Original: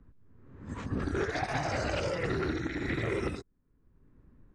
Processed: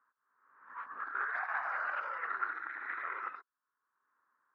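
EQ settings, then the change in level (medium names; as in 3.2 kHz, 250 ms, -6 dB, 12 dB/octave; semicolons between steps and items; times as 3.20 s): Butterworth band-pass 1.3 kHz, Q 2.1; +5.5 dB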